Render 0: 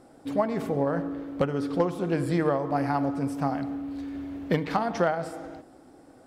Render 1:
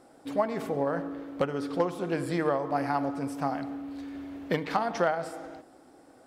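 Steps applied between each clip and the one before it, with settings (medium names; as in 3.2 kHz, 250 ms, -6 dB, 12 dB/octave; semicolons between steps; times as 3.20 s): bass shelf 260 Hz -9 dB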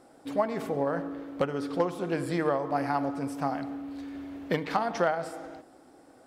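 no audible change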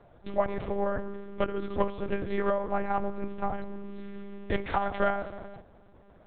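monotone LPC vocoder at 8 kHz 200 Hz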